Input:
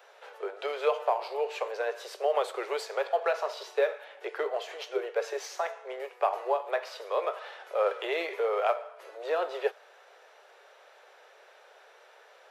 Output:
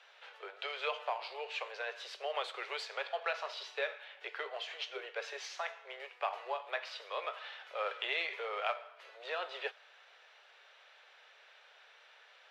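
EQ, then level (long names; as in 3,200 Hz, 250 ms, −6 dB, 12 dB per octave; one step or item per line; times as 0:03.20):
resonant band-pass 3,300 Hz, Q 1.3
high-shelf EQ 3,600 Hz −7.5 dB
+5.5 dB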